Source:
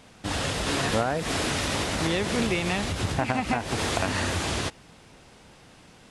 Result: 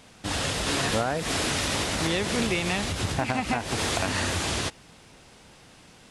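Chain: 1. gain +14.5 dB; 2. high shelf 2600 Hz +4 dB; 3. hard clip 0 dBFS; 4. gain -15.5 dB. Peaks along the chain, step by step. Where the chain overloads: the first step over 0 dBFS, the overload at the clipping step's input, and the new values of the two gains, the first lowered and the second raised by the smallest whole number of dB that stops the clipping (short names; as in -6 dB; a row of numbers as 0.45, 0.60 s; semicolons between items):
+3.5, +5.0, 0.0, -15.5 dBFS; step 1, 5.0 dB; step 1 +9.5 dB, step 4 -10.5 dB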